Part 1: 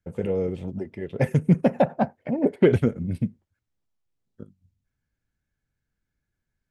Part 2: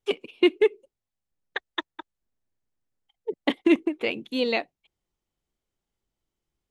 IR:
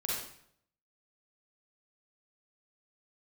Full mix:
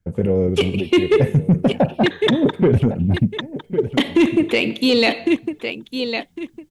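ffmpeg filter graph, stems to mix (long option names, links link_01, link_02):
-filter_complex "[0:a]volume=-4dB,asplit=2[link_01][link_02];[link_02]volume=-17dB[link_03];[1:a]highshelf=frequency=2300:gain=10.5,adelay=500,volume=0.5dB,asplit=3[link_04][link_05][link_06];[link_05]volume=-19.5dB[link_07];[link_06]volume=-11dB[link_08];[2:a]atrim=start_sample=2205[link_09];[link_07][link_09]afir=irnorm=-1:irlink=0[link_10];[link_03][link_08]amix=inputs=2:normalize=0,aecho=0:1:1105|2210|3315|4420:1|0.23|0.0529|0.0122[link_11];[link_01][link_04][link_10][link_11]amix=inputs=4:normalize=0,lowshelf=frequency=380:gain=9,acontrast=82,alimiter=limit=-8dB:level=0:latency=1:release=19"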